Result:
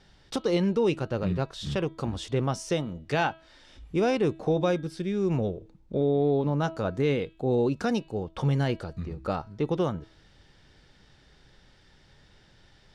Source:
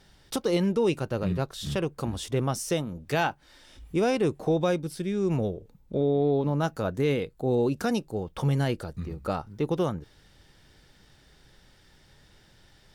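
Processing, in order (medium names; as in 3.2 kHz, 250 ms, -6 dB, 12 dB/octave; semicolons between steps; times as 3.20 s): low-pass 6 kHz 12 dB/octave; de-hum 324.7 Hz, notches 14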